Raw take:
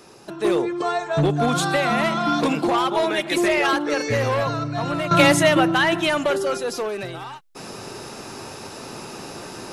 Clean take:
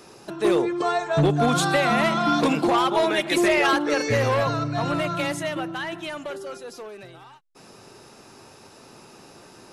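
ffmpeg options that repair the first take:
ffmpeg -i in.wav -af "asetnsamples=nb_out_samples=441:pad=0,asendcmd='5.11 volume volume -12dB',volume=0dB" out.wav

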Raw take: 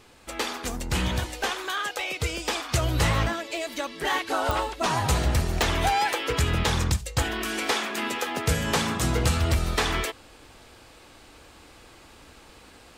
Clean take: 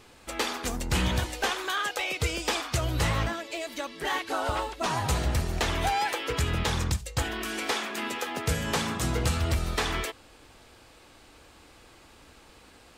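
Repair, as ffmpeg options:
ffmpeg -i in.wav -af "adeclick=threshold=4,asetnsamples=nb_out_samples=441:pad=0,asendcmd='2.69 volume volume -3.5dB',volume=0dB" out.wav

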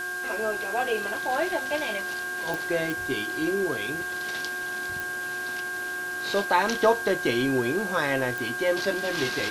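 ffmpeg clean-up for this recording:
ffmpeg -i in.wav -af "adeclick=threshold=4,bandreject=frequency=362.1:width_type=h:width=4,bandreject=frequency=724.2:width_type=h:width=4,bandreject=frequency=1086.3:width_type=h:width=4,bandreject=frequency=1448.4:width_type=h:width=4,bandreject=frequency=1600:width=30,afwtdn=0.0071" out.wav

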